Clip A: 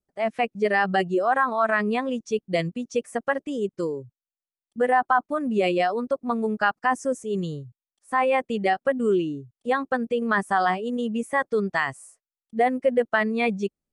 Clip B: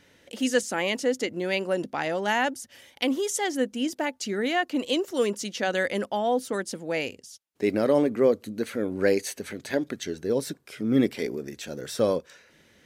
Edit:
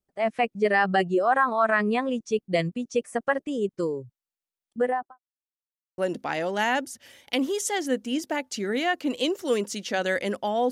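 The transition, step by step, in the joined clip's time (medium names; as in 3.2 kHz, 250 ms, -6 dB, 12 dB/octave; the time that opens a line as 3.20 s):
clip A
4.70–5.19 s: studio fade out
5.19–5.98 s: mute
5.98 s: go over to clip B from 1.67 s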